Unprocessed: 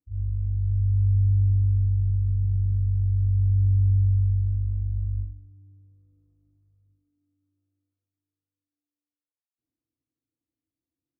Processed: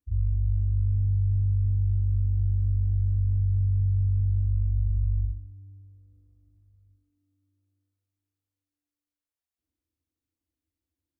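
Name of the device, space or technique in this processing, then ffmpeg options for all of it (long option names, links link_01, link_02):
car stereo with a boomy subwoofer: -af "lowshelf=frequency=100:width_type=q:width=3:gain=6.5,alimiter=limit=-18.5dB:level=0:latency=1:release=79"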